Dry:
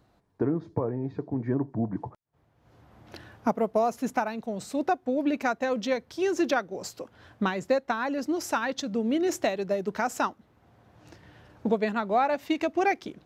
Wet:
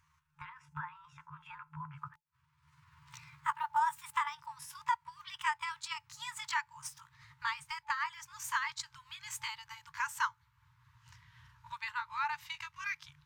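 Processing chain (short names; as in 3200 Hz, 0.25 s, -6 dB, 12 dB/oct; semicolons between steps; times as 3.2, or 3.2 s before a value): gliding pitch shift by +7.5 st ending unshifted; FFT band-reject 160–870 Hz; gain -3.5 dB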